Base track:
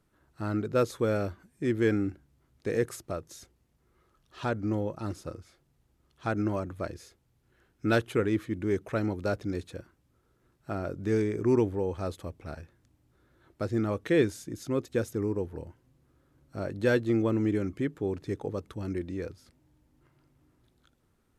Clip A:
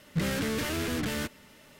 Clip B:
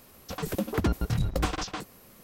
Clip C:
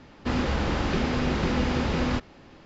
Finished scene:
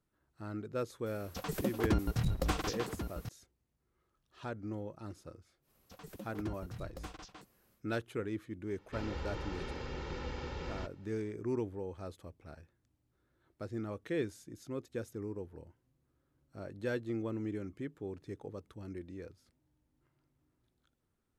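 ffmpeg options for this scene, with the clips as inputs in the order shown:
-filter_complex "[2:a]asplit=2[a][b];[0:a]volume=-11dB[c];[a]aecho=1:1:1090:0.335[d];[3:a]aecho=1:1:2.2:0.59[e];[d]atrim=end=2.23,asetpts=PTS-STARTPTS,volume=-5dB,afade=t=in:d=0.004:c=hsin,afade=t=out:st=2.226:d=0.004:c=hsin,adelay=1060[f];[b]atrim=end=2.23,asetpts=PTS-STARTPTS,volume=-18dB,afade=t=in:d=0.1,afade=t=out:st=2.13:d=0.1,adelay=247401S[g];[e]atrim=end=2.65,asetpts=PTS-STARTPTS,volume=-16.5dB,afade=t=in:d=0.004:c=hsin,afade=t=out:st=2.646:d=0.004:c=hsin,adelay=8670[h];[c][f][g][h]amix=inputs=4:normalize=0"

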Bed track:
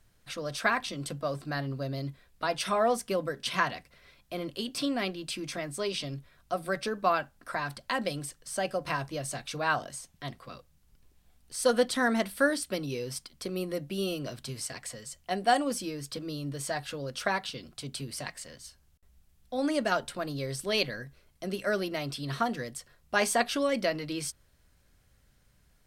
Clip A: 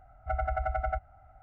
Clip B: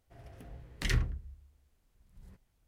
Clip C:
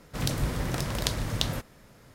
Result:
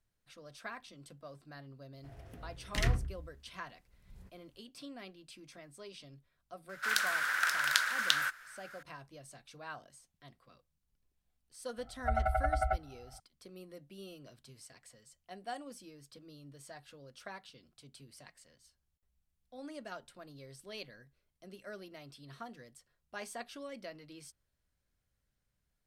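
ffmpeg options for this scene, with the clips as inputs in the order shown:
-filter_complex "[0:a]volume=-17.5dB[a];[3:a]highpass=f=1.5k:t=q:w=8.4[b];[2:a]atrim=end=2.67,asetpts=PTS-STARTPTS,volume=-0.5dB,afade=t=in:d=0.004:c=hsin,afade=t=out:st=2.666:d=0.004:c=hsin,adelay=1930[c];[b]atrim=end=2.14,asetpts=PTS-STARTPTS,volume=-1.5dB,afade=t=in:d=0.004:c=hsin,afade=t=out:st=2.136:d=0.004:c=hsin,adelay=6690[d];[1:a]atrim=end=1.42,asetpts=PTS-STARTPTS,volume=-0.5dB,afade=t=in:d=0.004:c=hsin,afade=t=out:st=1.416:d=0.004:c=hsin,adelay=519498S[e];[a][c][d][e]amix=inputs=4:normalize=0"

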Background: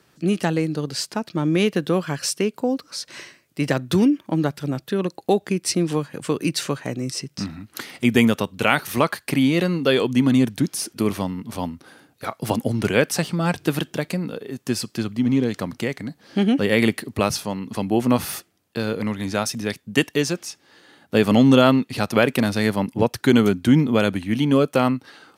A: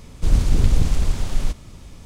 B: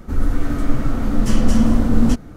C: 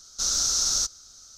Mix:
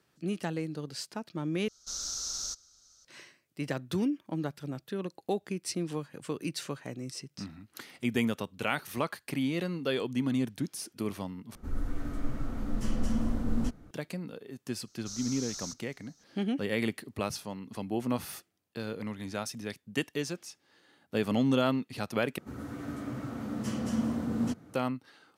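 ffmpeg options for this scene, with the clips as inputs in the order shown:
-filter_complex "[3:a]asplit=2[a][b];[2:a]asplit=2[c][d];[0:a]volume=-12.5dB[e];[b]bandreject=f=3.3k:w=21[f];[d]highpass=f=100:w=0.5412,highpass=f=100:w=1.3066[g];[e]asplit=4[h][i][j][k];[h]atrim=end=1.684[l];[a]atrim=end=1.37,asetpts=PTS-STARTPTS,volume=-12dB[m];[i]atrim=start=3.046:end=11.554[n];[c]atrim=end=2.36,asetpts=PTS-STARTPTS,volume=-15dB[o];[j]atrim=start=13.906:end=22.384[p];[g]atrim=end=2.36,asetpts=PTS-STARTPTS,volume=-13dB[q];[k]atrim=start=24.736[r];[f]atrim=end=1.37,asetpts=PTS-STARTPTS,volume=-16.5dB,afade=t=in:d=0.004:c=hsin,afade=t=out:st=1.366:d=0.004:c=hsin,adelay=14870[s];[l][m]acrossfade=d=0.004:c1=hsin:c2=hsin[t];[t][n]acrossfade=d=0.004:c1=hsin:c2=hsin[u];[u][o]acrossfade=d=0.004:c1=hsin:c2=hsin[v];[v][p]acrossfade=d=0.004:c1=hsin:c2=hsin[w];[w][q]acrossfade=d=0.004:c1=hsin:c2=hsin[x];[x][r]acrossfade=d=0.004:c1=hsin:c2=hsin[y];[y][s]amix=inputs=2:normalize=0"

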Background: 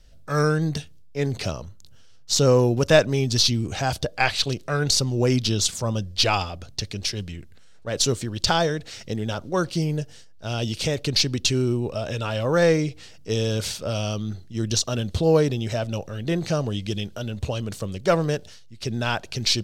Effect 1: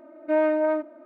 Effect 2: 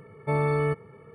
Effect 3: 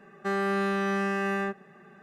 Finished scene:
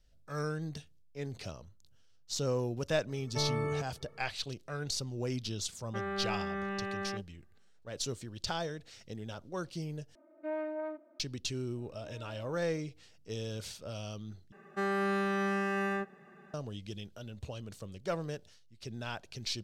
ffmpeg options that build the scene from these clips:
-filter_complex "[3:a]asplit=2[a][b];[1:a]asplit=2[c][d];[0:a]volume=-15dB[e];[a]afwtdn=0.02[f];[d]acompressor=threshold=-38dB:ratio=6:attack=3.2:release=140:knee=1:detection=peak[g];[e]asplit=3[h][i][j];[h]atrim=end=10.154[k];[c]atrim=end=1.05,asetpts=PTS-STARTPTS,volume=-15dB[l];[i]atrim=start=11.196:end=14.524[m];[b]atrim=end=2.02,asetpts=PTS-STARTPTS,volume=-4dB[n];[j]atrim=start=16.536[o];[2:a]atrim=end=1.14,asetpts=PTS-STARTPTS,volume=-9dB,afade=t=in:d=0.004:c=hsin,afade=t=out:st=1.136:d=0.004:c=hsin,adelay=3080[p];[f]atrim=end=2.02,asetpts=PTS-STARTPTS,volume=-9dB,afade=t=in:d=0.004:c=hsin,afade=t=out:st=2.016:d=0.004:c=hsin,adelay=250929S[q];[g]atrim=end=1.05,asetpts=PTS-STARTPTS,volume=-16dB,afade=t=in:d=0.004:c=hsin,afade=t=out:st=1.046:d=0.004:c=hsin,adelay=11760[r];[k][l]acrossfade=d=0.004:c1=hsin:c2=hsin[s];[s][m]acrossfade=d=0.004:c1=hsin:c2=hsin[t];[t][n]acrossfade=d=0.004:c1=hsin:c2=hsin[u];[u][o]acrossfade=d=0.004:c1=hsin:c2=hsin[v];[v][p][q][r]amix=inputs=4:normalize=0"

